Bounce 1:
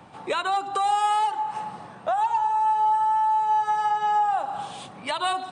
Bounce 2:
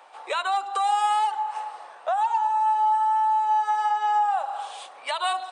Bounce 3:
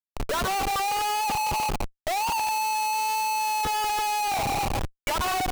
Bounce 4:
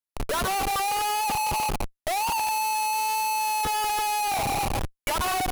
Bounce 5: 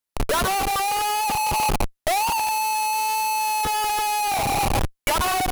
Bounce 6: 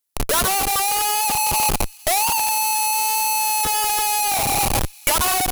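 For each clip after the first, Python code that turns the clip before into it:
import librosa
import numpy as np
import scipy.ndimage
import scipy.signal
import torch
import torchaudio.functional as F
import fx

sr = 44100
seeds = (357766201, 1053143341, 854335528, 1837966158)

y1 = scipy.signal.sosfilt(scipy.signal.butter(4, 530.0, 'highpass', fs=sr, output='sos'), x)
y2 = fx.spec_topn(y1, sr, count=16)
y2 = y2 + 10.0 ** (-15.5 / 20.0) * np.pad(y2, (int(142 * sr / 1000.0), 0))[:len(y2)]
y2 = fx.schmitt(y2, sr, flips_db=-35.0)
y2 = F.gain(torch.from_numpy(y2), -1.5).numpy()
y3 = fx.peak_eq(y2, sr, hz=11000.0, db=9.0, octaves=0.2)
y4 = fx.rider(y3, sr, range_db=10, speed_s=0.5)
y4 = F.gain(torch.from_numpy(y4), 3.5).numpy()
y5 = fx.high_shelf(y4, sr, hz=4800.0, db=11.0)
y5 = fx.echo_wet_highpass(y5, sr, ms=458, feedback_pct=61, hz=2500.0, wet_db=-23)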